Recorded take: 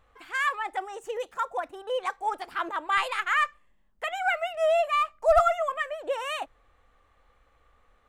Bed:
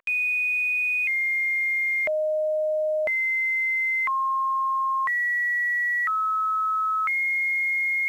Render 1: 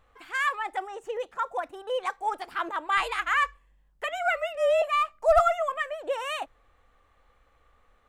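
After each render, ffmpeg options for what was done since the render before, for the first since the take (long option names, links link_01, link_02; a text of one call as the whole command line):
ffmpeg -i in.wav -filter_complex "[0:a]asettb=1/sr,asplit=3[link_01][link_02][link_03];[link_01]atrim=end=0.874[link_04];[link_02]atrim=start=0.87:end=1.46,asetpts=PTS-STARTPTS,afade=type=in:duration=0.004:curve=qsin,afade=type=out:start_time=0.586:duration=0.004:curve=qsin,aemphasis=mode=reproduction:type=cd[link_05];[link_03]atrim=start=1.456[link_06];[link_04][link_05]acrossfade=duration=0.004:curve1=hsin:curve2=qsin[link_07];[link_07][link_06]acrossfade=duration=0.004:curve1=qsin:curve2=hsin,asettb=1/sr,asplit=3[link_08][link_09][link_10];[link_08]atrim=end=3.004[link_11];[link_09]atrim=start=3:end=4.82,asetpts=PTS-STARTPTS,afade=type=in:duration=0.004:curve=qsin,afade=type=out:start_time=1.816:duration=0.004:curve=qsin,afreqshift=-48[link_12];[link_10]atrim=start=4.816[link_13];[link_11][link_12]acrossfade=duration=0.004:curve1=hsin:curve2=qsin[link_14];[link_14][link_13]acrossfade=duration=0.004:curve1=qsin:curve2=hsin" out.wav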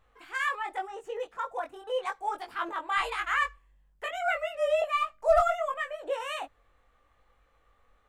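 ffmpeg -i in.wav -af "flanger=delay=19.5:depth=2.1:speed=0.83" out.wav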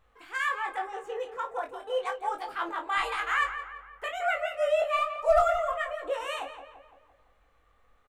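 ffmpeg -i in.wav -filter_complex "[0:a]asplit=2[link_01][link_02];[link_02]adelay=33,volume=-12dB[link_03];[link_01][link_03]amix=inputs=2:normalize=0,asplit=2[link_04][link_05];[link_05]adelay=170,lowpass=frequency=2800:poles=1,volume=-9.5dB,asplit=2[link_06][link_07];[link_07]adelay=170,lowpass=frequency=2800:poles=1,volume=0.52,asplit=2[link_08][link_09];[link_09]adelay=170,lowpass=frequency=2800:poles=1,volume=0.52,asplit=2[link_10][link_11];[link_11]adelay=170,lowpass=frequency=2800:poles=1,volume=0.52,asplit=2[link_12][link_13];[link_13]adelay=170,lowpass=frequency=2800:poles=1,volume=0.52,asplit=2[link_14][link_15];[link_15]adelay=170,lowpass=frequency=2800:poles=1,volume=0.52[link_16];[link_04][link_06][link_08][link_10][link_12][link_14][link_16]amix=inputs=7:normalize=0" out.wav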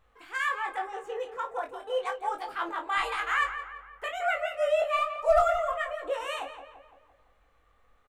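ffmpeg -i in.wav -af anull out.wav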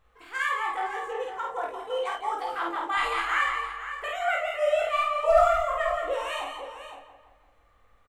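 ffmpeg -i in.wav -filter_complex "[0:a]asplit=2[link_01][link_02];[link_02]adelay=50,volume=-2.5dB[link_03];[link_01][link_03]amix=inputs=2:normalize=0,asplit=2[link_04][link_05];[link_05]aecho=0:1:171|510:0.355|0.251[link_06];[link_04][link_06]amix=inputs=2:normalize=0" out.wav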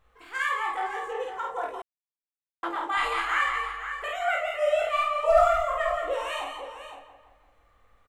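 ffmpeg -i in.wav -filter_complex "[0:a]asettb=1/sr,asplit=3[link_01][link_02][link_03];[link_01]atrim=end=3.524[link_04];[link_02]atrim=start=3.52:end=4.04,asetpts=PTS-STARTPTS,afade=type=in:duration=0.004:curve=qsin,afade=type=out:start_time=0.516:duration=0.004:curve=qsin,asplit=2[link_05][link_06];[link_06]adelay=19,volume=-5dB[link_07];[link_05][link_07]amix=inputs=2:normalize=0,atrim=end_sample=22932[link_08];[link_03]atrim=start=4.036[link_09];[link_04][link_08]acrossfade=duration=0.004:curve1=hsin:curve2=qsin[link_10];[link_10][link_09]acrossfade=duration=0.004:curve1=qsin:curve2=hsin,asplit=3[link_11][link_12][link_13];[link_11]atrim=end=1.82,asetpts=PTS-STARTPTS,afade=type=out:start_time=1.816:duration=0.004:curve=hsin[link_14];[link_12]atrim=start=1.82:end=2.63,asetpts=PTS-STARTPTS,volume=0[link_15];[link_13]atrim=start=2.63,asetpts=PTS-STARTPTS,afade=type=in:duration=0.004:curve=hsin[link_16];[link_14][link_15][link_16]concat=n=3:v=0:a=1" out.wav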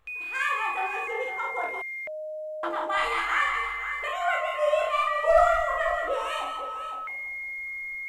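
ffmpeg -i in.wav -i bed.wav -filter_complex "[1:a]volume=-11dB[link_01];[0:a][link_01]amix=inputs=2:normalize=0" out.wav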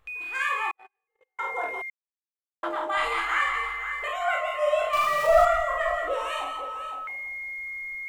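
ffmpeg -i in.wav -filter_complex "[0:a]asettb=1/sr,asplit=3[link_01][link_02][link_03];[link_01]atrim=end=0.714[link_04];[link_02]atrim=start=0.71:end=1.39,asetpts=PTS-STARTPTS,afade=type=in:duration=0.004:curve=qsin,afade=type=out:start_time=0.676:duration=0.004:curve=qsin,agate=range=-53dB:threshold=-25dB:ratio=16:release=100:detection=peak[link_05];[link_03]atrim=start=1.386[link_06];[link_04][link_05]acrossfade=duration=0.004:curve1=hsin:curve2=qsin[link_07];[link_07][link_06]acrossfade=duration=0.004:curve1=qsin:curve2=hsin,asettb=1/sr,asplit=3[link_08][link_09][link_10];[link_08]atrim=end=4.934[link_11];[link_09]atrim=start=4.93:end=5.45,asetpts=PTS-STARTPTS,afade=type=in:duration=0.004:curve=qsin,afade=type=out:start_time=0.516:duration=0.004:curve=qsin,aeval=exprs='val(0)+0.5*0.0316*sgn(val(0))':channel_layout=same[link_12];[link_10]atrim=start=5.446[link_13];[link_11][link_12]acrossfade=duration=0.004:curve1=hsin:curve2=qsin[link_14];[link_14][link_13]acrossfade=duration=0.004:curve1=qsin:curve2=hsin,asplit=3[link_15][link_16][link_17];[link_15]atrim=end=1.9,asetpts=PTS-STARTPTS,afade=type=out:start_time=1.896:duration=0.004:curve=hsin[link_18];[link_16]atrim=start=1.9:end=2.63,asetpts=PTS-STARTPTS,volume=0[link_19];[link_17]atrim=start=2.63,asetpts=PTS-STARTPTS,afade=type=in:duration=0.004:curve=hsin[link_20];[link_18][link_19][link_20]concat=n=3:v=0:a=1" out.wav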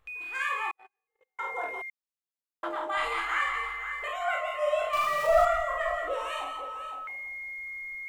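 ffmpeg -i in.wav -af "volume=-3.5dB" out.wav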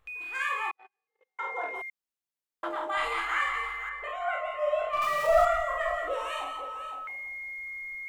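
ffmpeg -i in.wav -filter_complex "[0:a]asettb=1/sr,asplit=3[link_01][link_02][link_03];[link_01]atrim=end=0.704[link_04];[link_02]atrim=start=0.7:end=1.75,asetpts=PTS-STARTPTS,afade=type=in:duration=0.004:curve=qsin,afade=type=out:start_time=1.046:duration=0.004:curve=qsin,highpass=160,lowpass=5800[link_05];[link_03]atrim=start=1.746[link_06];[link_04][link_05]acrossfade=duration=0.004:curve1=hsin:curve2=qsin[link_07];[link_07][link_06]acrossfade=duration=0.004:curve1=qsin:curve2=hsin,asettb=1/sr,asplit=3[link_08][link_09][link_10];[link_08]atrim=end=3.894[link_11];[link_09]atrim=start=3.89:end=5.02,asetpts=PTS-STARTPTS,afade=type=in:duration=0.004:curve=qsin,afade=type=out:start_time=1.126:duration=0.004:curve=qsin,lowpass=frequency=1800:poles=1[link_12];[link_10]atrim=start=5.016[link_13];[link_11][link_12]acrossfade=duration=0.004:curve1=hsin:curve2=qsin[link_14];[link_14][link_13]acrossfade=duration=0.004:curve1=qsin:curve2=hsin" out.wav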